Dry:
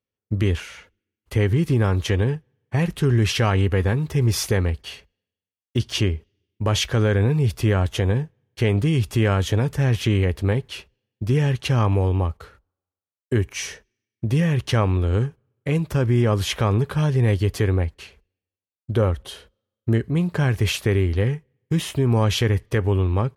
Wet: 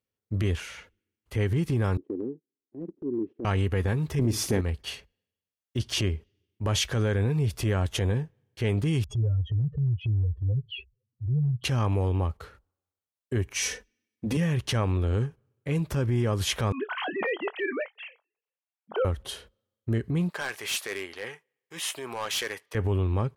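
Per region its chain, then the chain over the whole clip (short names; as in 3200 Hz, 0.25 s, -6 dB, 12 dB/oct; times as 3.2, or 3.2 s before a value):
1.97–3.45 Butterworth band-pass 310 Hz, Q 2.5 + gate -52 dBFS, range -13 dB
4.19–4.61 bell 270 Hz +14 dB 1.1 oct + flutter echo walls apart 9.1 m, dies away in 0.24 s
9.04–11.64 spectral contrast raised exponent 3.6 + treble ducked by the level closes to 1700 Hz, closed at -22 dBFS
13.62–14.37 bell 370 Hz +5.5 dB 0.33 oct + comb 4 ms, depth 95%
16.72–19.05 sine-wave speech + HPF 600 Hz + doubler 23 ms -12.5 dB
20.3–22.75 HPF 760 Hz + overloaded stage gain 24.5 dB
whole clip: transient shaper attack -8 dB, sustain -2 dB; dynamic EQ 8600 Hz, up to +4 dB, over -45 dBFS, Q 0.76; compressor 3:1, threshold -24 dBFS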